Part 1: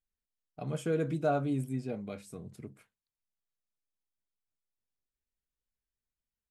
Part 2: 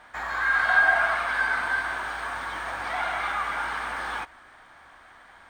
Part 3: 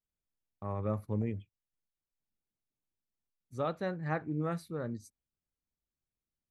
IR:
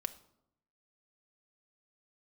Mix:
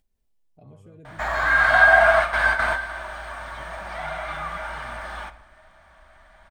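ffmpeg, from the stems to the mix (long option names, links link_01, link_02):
-filter_complex "[0:a]alimiter=level_in=4.5dB:limit=-24dB:level=0:latency=1:release=309,volume=-4.5dB,volume=-9.5dB,asplit=3[link_01][link_02][link_03];[link_02]volume=-6dB[link_04];[1:a]equalizer=frequency=640:width_type=o:width=0.2:gain=14.5,adelay=1050,volume=2dB,asplit=2[link_05][link_06];[link_06]volume=-5.5dB[link_07];[2:a]volume=-17dB[link_08];[link_03]apad=whole_len=288563[link_09];[link_05][link_09]sidechaingate=range=-33dB:threshold=-58dB:ratio=16:detection=peak[link_10];[link_01][link_08]amix=inputs=2:normalize=0,lowpass=frequency=1200:width=0.5412,lowpass=frequency=1200:width=1.3066,alimiter=level_in=18.5dB:limit=-24dB:level=0:latency=1,volume=-18.5dB,volume=0dB[link_11];[3:a]atrim=start_sample=2205[link_12];[link_04][link_07]amix=inputs=2:normalize=0[link_13];[link_13][link_12]afir=irnorm=-1:irlink=0[link_14];[link_10][link_11][link_14]amix=inputs=3:normalize=0,acompressor=mode=upward:threshold=-54dB:ratio=2.5,asubboost=boost=5.5:cutoff=140"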